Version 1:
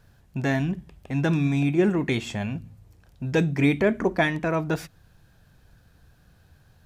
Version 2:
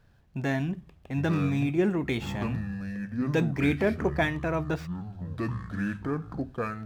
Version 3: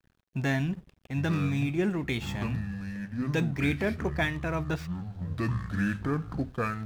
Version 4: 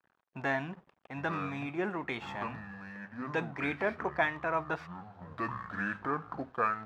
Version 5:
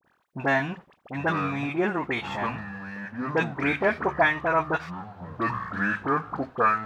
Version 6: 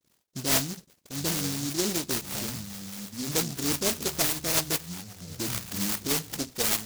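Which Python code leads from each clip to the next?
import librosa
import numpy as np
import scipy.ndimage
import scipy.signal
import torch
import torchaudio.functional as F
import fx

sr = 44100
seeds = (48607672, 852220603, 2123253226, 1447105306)

y1 = scipy.signal.medfilt(x, 5)
y1 = fx.echo_pitch(y1, sr, ms=661, semitones=-6, count=2, db_per_echo=-6.0)
y1 = fx.hum_notches(y1, sr, base_hz=50, count=2)
y1 = y1 * librosa.db_to_amplitude(-4.0)
y2 = fx.peak_eq(y1, sr, hz=500.0, db=-6.5, octaves=2.9)
y2 = fx.rider(y2, sr, range_db=4, speed_s=2.0)
y2 = np.sign(y2) * np.maximum(np.abs(y2) - 10.0 ** (-55.5 / 20.0), 0.0)
y2 = y2 * librosa.db_to_amplitude(2.5)
y3 = fx.bandpass_q(y2, sr, hz=1000.0, q=1.4)
y3 = y3 * librosa.db_to_amplitude(5.5)
y4 = fx.dispersion(y3, sr, late='highs', ms=41.0, hz=1400.0)
y4 = y4 * librosa.db_to_amplitude(8.5)
y5 = fx.rotary(y4, sr, hz=5.0)
y5 = fx.noise_mod_delay(y5, sr, seeds[0], noise_hz=5400.0, depth_ms=0.33)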